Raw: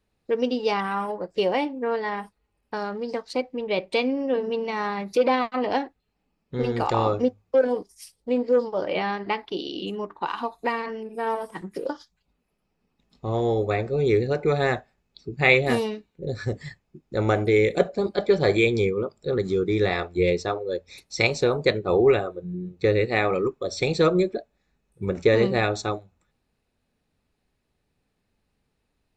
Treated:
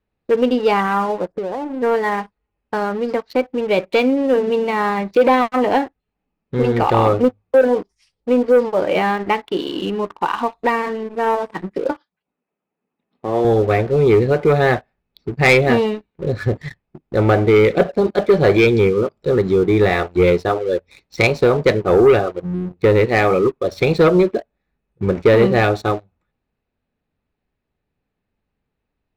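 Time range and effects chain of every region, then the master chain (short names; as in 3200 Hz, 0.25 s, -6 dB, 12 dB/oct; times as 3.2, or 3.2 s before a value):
1.32–1.82 LPF 1400 Hz 24 dB/oct + compressor 12:1, threshold -29 dBFS
11.91–13.45 BPF 230–6000 Hz + air absorption 210 m
whole clip: LPF 2900 Hz 12 dB/oct; sample leveller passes 2; gain +1.5 dB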